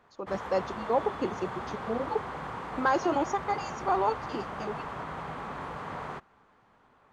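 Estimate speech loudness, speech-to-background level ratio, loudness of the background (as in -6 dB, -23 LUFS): -31.5 LUFS, 6.5 dB, -38.0 LUFS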